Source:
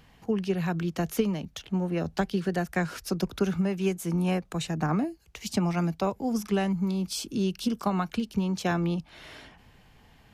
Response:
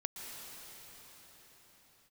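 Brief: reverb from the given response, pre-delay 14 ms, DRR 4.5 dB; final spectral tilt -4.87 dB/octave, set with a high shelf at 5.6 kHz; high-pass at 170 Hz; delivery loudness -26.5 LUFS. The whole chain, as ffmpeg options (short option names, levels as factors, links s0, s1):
-filter_complex "[0:a]highpass=170,highshelf=f=5600:g=6,asplit=2[s0][s1];[1:a]atrim=start_sample=2205,adelay=14[s2];[s1][s2]afir=irnorm=-1:irlink=0,volume=0.562[s3];[s0][s3]amix=inputs=2:normalize=0,volume=1.41"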